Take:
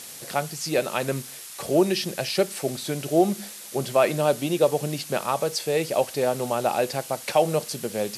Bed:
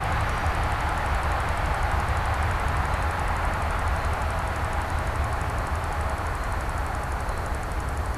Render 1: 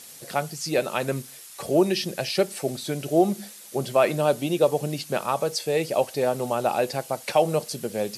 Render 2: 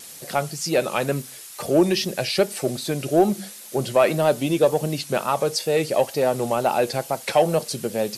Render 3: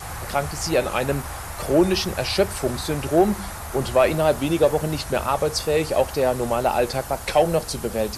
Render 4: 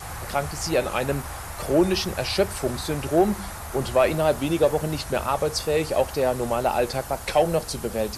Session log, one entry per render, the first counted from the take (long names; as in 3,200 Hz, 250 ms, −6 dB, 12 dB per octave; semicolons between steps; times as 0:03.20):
broadband denoise 6 dB, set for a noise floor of −41 dBFS
in parallel at −5 dB: soft clipping −19 dBFS, distortion −10 dB; on the sum: tape wow and flutter 73 cents
mix in bed −8.5 dB
level −2 dB